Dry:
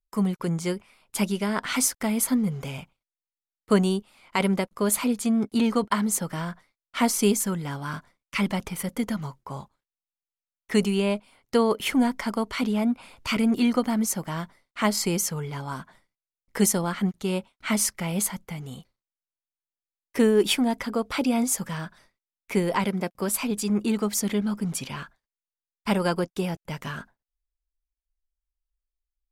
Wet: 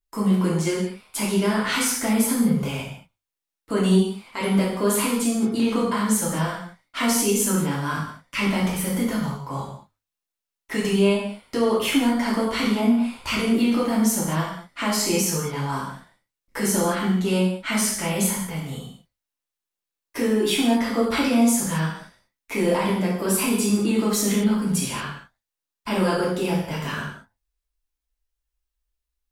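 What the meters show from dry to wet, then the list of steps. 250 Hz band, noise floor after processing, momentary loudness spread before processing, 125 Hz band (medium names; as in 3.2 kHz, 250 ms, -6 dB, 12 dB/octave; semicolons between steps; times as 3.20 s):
+3.5 dB, under -85 dBFS, 13 LU, +4.5 dB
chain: peak limiter -19.5 dBFS, peak gain reduction 10 dB; hum notches 50/100 Hz; gated-style reverb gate 250 ms falling, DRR -6 dB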